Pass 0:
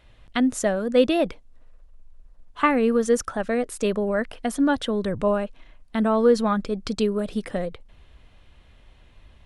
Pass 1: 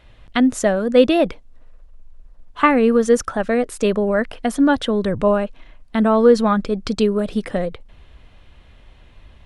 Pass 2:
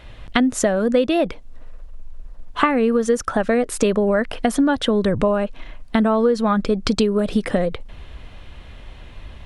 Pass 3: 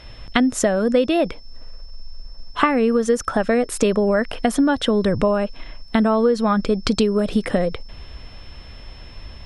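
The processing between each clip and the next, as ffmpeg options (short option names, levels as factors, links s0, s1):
-af "highshelf=f=6800:g=-5.5,volume=1.88"
-af "acompressor=threshold=0.0708:ratio=6,volume=2.51"
-af "aeval=exprs='val(0)+0.00447*sin(2*PI*5300*n/s)':c=same"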